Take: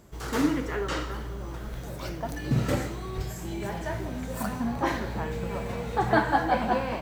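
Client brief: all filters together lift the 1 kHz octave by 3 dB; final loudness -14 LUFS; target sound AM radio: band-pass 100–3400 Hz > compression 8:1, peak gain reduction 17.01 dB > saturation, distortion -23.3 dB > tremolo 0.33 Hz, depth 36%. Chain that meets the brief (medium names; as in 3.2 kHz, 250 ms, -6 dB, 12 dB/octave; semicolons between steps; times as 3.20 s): band-pass 100–3400 Hz; peaking EQ 1 kHz +4 dB; compression 8:1, threshold -32 dBFS; saturation -25 dBFS; tremolo 0.33 Hz, depth 36%; trim +25 dB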